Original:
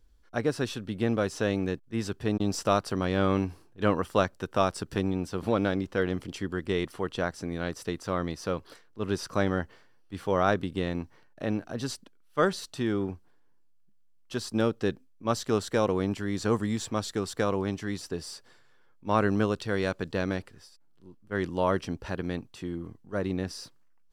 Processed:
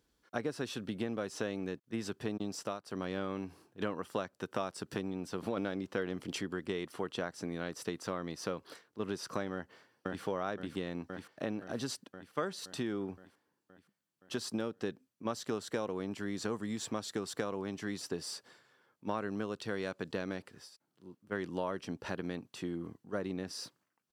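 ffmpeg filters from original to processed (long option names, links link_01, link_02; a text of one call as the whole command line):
ffmpeg -i in.wav -filter_complex "[0:a]asplit=2[link_01][link_02];[link_02]afade=type=in:start_time=9.53:duration=0.01,afade=type=out:start_time=10.23:duration=0.01,aecho=0:1:520|1040|1560|2080|2600|3120|3640|4160|4680|5200:0.562341|0.365522|0.237589|0.154433|0.100381|0.0652479|0.0424112|0.0275673|0.0179187|0.0116472[link_03];[link_01][link_03]amix=inputs=2:normalize=0,asplit=5[link_04][link_05][link_06][link_07][link_08];[link_04]atrim=end=2.8,asetpts=PTS-STARTPTS,afade=type=out:start_time=2.45:duration=0.35:silence=0.105925[link_09];[link_05]atrim=start=2.8:end=2.83,asetpts=PTS-STARTPTS,volume=-19.5dB[link_10];[link_06]atrim=start=2.83:end=5.572,asetpts=PTS-STARTPTS,afade=type=in:duration=0.35:silence=0.105925[link_11];[link_07]atrim=start=5.568:end=6.412,asetpts=PTS-STARTPTS,volume=6.5dB[link_12];[link_08]atrim=start=6.408[link_13];[link_09][link_10][link_11]concat=n=3:v=0:a=1[link_14];[link_14][link_12]acrossfade=duration=0.004:curve1=hsin:curve2=hsin[link_15];[link_15][link_13]acrossfade=duration=0.004:curve1=hsin:curve2=hsin,acompressor=threshold=-32dB:ratio=6,highpass=150" out.wav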